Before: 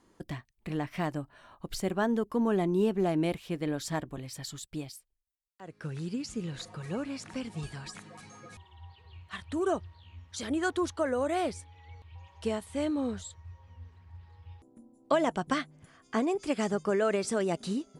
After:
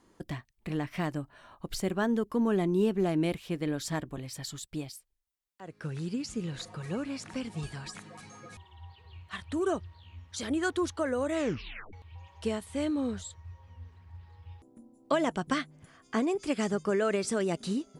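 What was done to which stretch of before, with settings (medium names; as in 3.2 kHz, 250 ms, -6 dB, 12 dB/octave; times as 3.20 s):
11.30 s: tape stop 0.63 s
whole clip: dynamic bell 760 Hz, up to -4 dB, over -40 dBFS, Q 1.3; trim +1 dB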